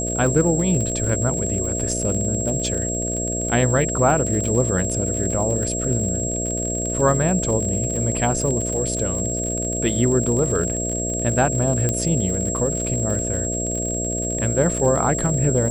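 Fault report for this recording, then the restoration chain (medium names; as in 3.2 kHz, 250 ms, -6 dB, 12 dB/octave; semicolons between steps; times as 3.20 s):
buzz 60 Hz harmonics 11 -27 dBFS
crackle 51 per s -26 dBFS
whine 7.6 kHz -25 dBFS
11.89 s: pop -8 dBFS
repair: de-click; de-hum 60 Hz, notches 11; band-stop 7.6 kHz, Q 30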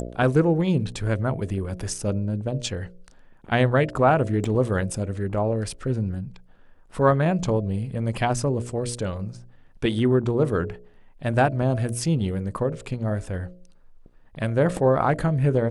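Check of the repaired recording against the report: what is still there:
11.89 s: pop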